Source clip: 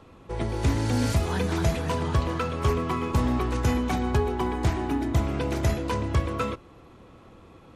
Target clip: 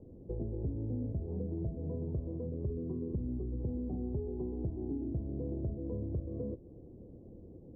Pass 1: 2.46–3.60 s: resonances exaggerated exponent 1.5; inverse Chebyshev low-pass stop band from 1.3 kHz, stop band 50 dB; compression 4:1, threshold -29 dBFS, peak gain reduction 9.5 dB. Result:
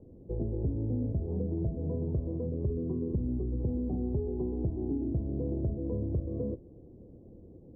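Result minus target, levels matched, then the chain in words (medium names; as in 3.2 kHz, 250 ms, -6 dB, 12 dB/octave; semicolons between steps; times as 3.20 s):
compression: peak gain reduction -5 dB
2.46–3.60 s: resonances exaggerated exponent 1.5; inverse Chebyshev low-pass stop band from 1.3 kHz, stop band 50 dB; compression 4:1, threshold -35.5 dBFS, peak gain reduction 14.5 dB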